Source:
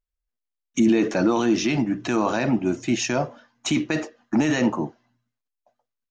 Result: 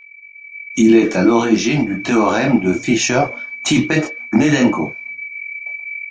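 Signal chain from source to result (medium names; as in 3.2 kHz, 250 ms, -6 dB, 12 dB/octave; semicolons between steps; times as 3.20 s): whistle 2.3 kHz -36 dBFS; chorus voices 4, 0.89 Hz, delay 24 ms, depth 3.6 ms; level rider gain up to 14 dB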